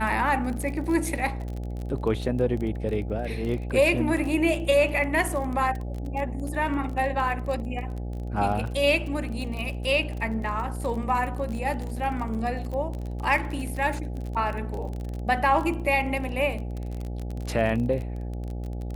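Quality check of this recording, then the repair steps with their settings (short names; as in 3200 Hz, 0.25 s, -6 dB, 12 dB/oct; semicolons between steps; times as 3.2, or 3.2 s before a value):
buzz 60 Hz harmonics 14 -32 dBFS
crackle 29/s -31 dBFS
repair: de-click; de-hum 60 Hz, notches 14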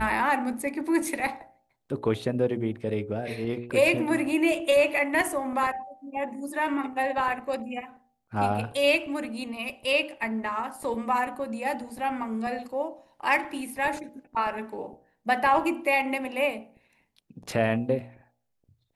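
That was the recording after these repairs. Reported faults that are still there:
none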